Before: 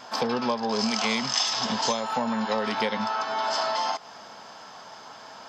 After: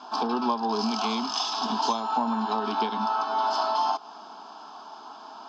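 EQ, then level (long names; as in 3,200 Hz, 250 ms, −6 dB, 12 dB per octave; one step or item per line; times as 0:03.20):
band-pass filter 190–5,400 Hz
high-frequency loss of the air 99 metres
phaser with its sweep stopped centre 530 Hz, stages 6
+4.0 dB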